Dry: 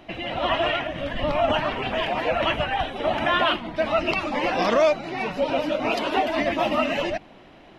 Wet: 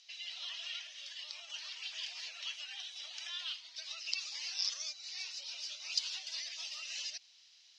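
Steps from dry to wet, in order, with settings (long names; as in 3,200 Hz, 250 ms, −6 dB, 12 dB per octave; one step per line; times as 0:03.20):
downward compressor, threshold −23 dBFS, peak gain reduction 8.5 dB
flat-topped band-pass 5,500 Hz, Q 2.3
level +9.5 dB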